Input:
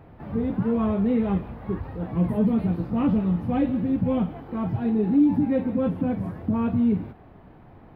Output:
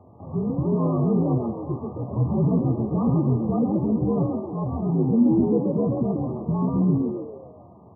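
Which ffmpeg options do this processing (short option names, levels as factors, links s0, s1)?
-filter_complex "[0:a]asplit=7[s0][s1][s2][s3][s4][s5][s6];[s1]adelay=134,afreqshift=88,volume=0.562[s7];[s2]adelay=268,afreqshift=176,volume=0.26[s8];[s3]adelay=402,afreqshift=264,volume=0.119[s9];[s4]adelay=536,afreqshift=352,volume=0.055[s10];[s5]adelay=670,afreqshift=440,volume=0.0251[s11];[s6]adelay=804,afreqshift=528,volume=0.0116[s12];[s0][s7][s8][s9][s10][s11][s12]amix=inputs=7:normalize=0,afftfilt=real='re*between(b*sr/4096,120,1300)':imag='im*between(b*sr/4096,120,1300)':win_size=4096:overlap=0.75,afreqshift=-52"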